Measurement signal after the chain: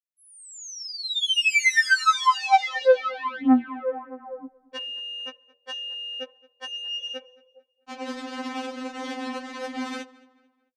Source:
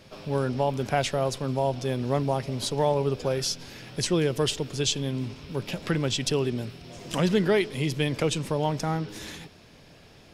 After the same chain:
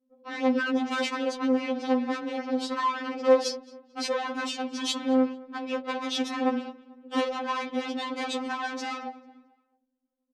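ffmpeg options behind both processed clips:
-filter_complex "[0:a]aemphasis=mode=reproduction:type=bsi,agate=range=-15dB:threshold=-27dB:ratio=16:detection=peak,flanger=delay=8.7:depth=2.1:regen=88:speed=0.37:shape=triangular,highshelf=f=2.1k:g=-6.5,acompressor=threshold=-27dB:ratio=16,anlmdn=0.00158,aeval=exprs='0.106*sin(PI/2*2.82*val(0)/0.106)':c=same,aeval=exprs='(tanh(15.8*val(0)+0.25)-tanh(0.25))/15.8':c=same,crystalizer=i=1.5:c=0,highpass=260,lowpass=6.2k,asplit=2[a][b];[b]adelay=221,lowpass=f=3.5k:p=1,volume=-21dB,asplit=2[c][d];[d]adelay=221,lowpass=f=3.5k:p=1,volume=0.4,asplit=2[e][f];[f]adelay=221,lowpass=f=3.5k:p=1,volume=0.4[g];[c][e][g]amix=inputs=3:normalize=0[h];[a][h]amix=inputs=2:normalize=0,afftfilt=real='re*3.46*eq(mod(b,12),0)':imag='im*3.46*eq(mod(b,12),0)':win_size=2048:overlap=0.75,volume=7dB"

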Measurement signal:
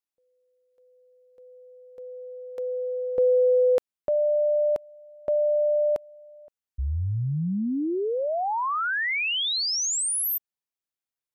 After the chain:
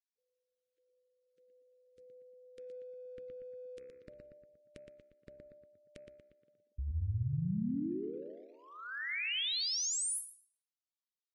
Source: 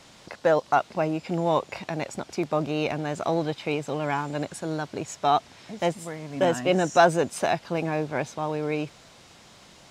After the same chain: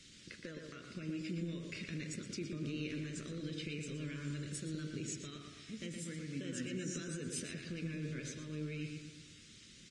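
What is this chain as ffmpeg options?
-filter_complex "[0:a]bandreject=f=66.14:t=h:w=4,bandreject=f=132.28:t=h:w=4,bandreject=f=198.42:t=h:w=4,bandreject=f=264.56:t=h:w=4,bandreject=f=330.7:t=h:w=4,bandreject=f=396.84:t=h:w=4,bandreject=f=462.98:t=h:w=4,bandreject=f=529.12:t=h:w=4,bandreject=f=595.26:t=h:w=4,bandreject=f=661.4:t=h:w=4,bandreject=f=727.54:t=h:w=4,bandreject=f=793.68:t=h:w=4,bandreject=f=859.82:t=h:w=4,bandreject=f=925.96:t=h:w=4,bandreject=f=992.1:t=h:w=4,bandreject=f=1.05824k:t=h:w=4,bandreject=f=1.12438k:t=h:w=4,bandreject=f=1.19052k:t=h:w=4,bandreject=f=1.25666k:t=h:w=4,bandreject=f=1.3228k:t=h:w=4,bandreject=f=1.38894k:t=h:w=4,bandreject=f=1.45508k:t=h:w=4,bandreject=f=1.52122k:t=h:w=4,bandreject=f=1.58736k:t=h:w=4,bandreject=f=1.6535k:t=h:w=4,bandreject=f=1.71964k:t=h:w=4,bandreject=f=1.78578k:t=h:w=4,bandreject=f=1.85192k:t=h:w=4,bandreject=f=1.91806k:t=h:w=4,bandreject=f=1.9842k:t=h:w=4,bandreject=f=2.05034k:t=h:w=4,bandreject=f=2.11648k:t=h:w=4,bandreject=f=2.18262k:t=h:w=4,bandreject=f=2.24876k:t=h:w=4,bandreject=f=2.3149k:t=h:w=4,bandreject=f=2.38104k:t=h:w=4,bandreject=f=2.44718k:t=h:w=4,bandreject=f=2.51332k:t=h:w=4,bandreject=f=2.57946k:t=h:w=4,acompressor=threshold=-27dB:ratio=12:attack=1.2:release=119:knee=1:detection=peak,asuperstop=centerf=810:order=4:qfactor=0.52,asplit=2[a][b];[b]adelay=118,lowpass=f=2.9k:p=1,volume=-4dB,asplit=2[c][d];[d]adelay=118,lowpass=f=2.9k:p=1,volume=0.53,asplit=2[e][f];[f]adelay=118,lowpass=f=2.9k:p=1,volume=0.53,asplit=2[g][h];[h]adelay=118,lowpass=f=2.9k:p=1,volume=0.53,asplit=2[i][j];[j]adelay=118,lowpass=f=2.9k:p=1,volume=0.53,asplit=2[k][l];[l]adelay=118,lowpass=f=2.9k:p=1,volume=0.53,asplit=2[m][n];[n]adelay=118,lowpass=f=2.9k:p=1,volume=0.53[o];[a][c][e][g][i][k][m][o]amix=inputs=8:normalize=0,volume=-6dB" -ar 22050 -c:a libvorbis -b:a 32k

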